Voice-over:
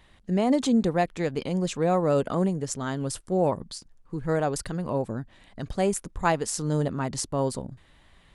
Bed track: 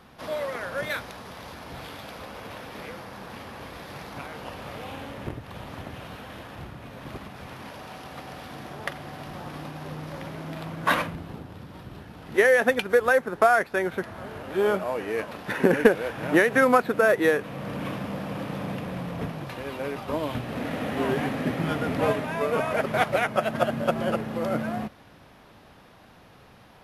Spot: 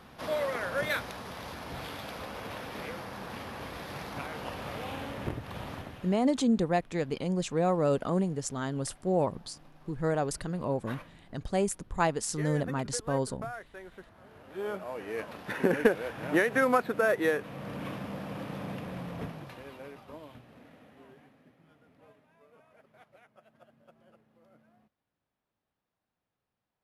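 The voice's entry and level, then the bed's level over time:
5.75 s, −3.5 dB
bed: 0:05.70 −0.5 dB
0:06.45 −21 dB
0:13.83 −21 dB
0:15.27 −6 dB
0:19.21 −6 dB
0:21.58 −35.5 dB

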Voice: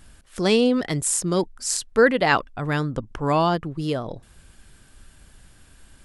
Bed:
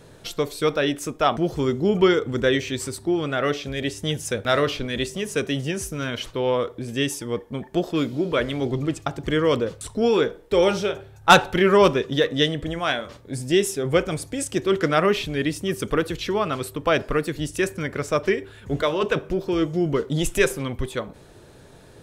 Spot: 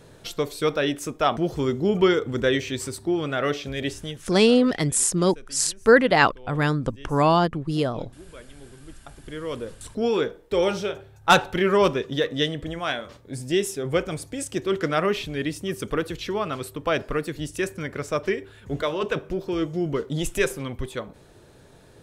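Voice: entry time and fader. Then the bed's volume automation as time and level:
3.90 s, +1.5 dB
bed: 0:03.92 −1.5 dB
0:04.44 −22.5 dB
0:08.80 −22.5 dB
0:09.97 −3.5 dB

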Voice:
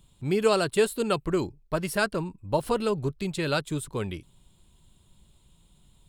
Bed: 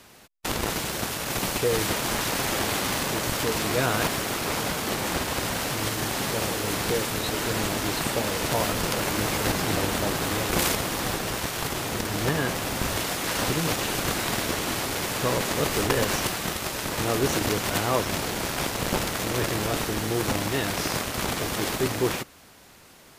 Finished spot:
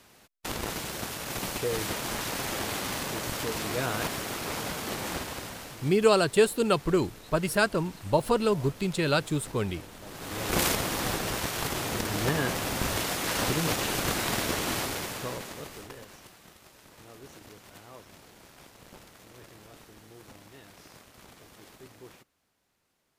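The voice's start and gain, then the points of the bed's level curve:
5.60 s, +1.5 dB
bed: 0:05.13 −6 dB
0:06.09 −21 dB
0:09.99 −21 dB
0:10.54 −2 dB
0:14.80 −2 dB
0:16.11 −24.5 dB

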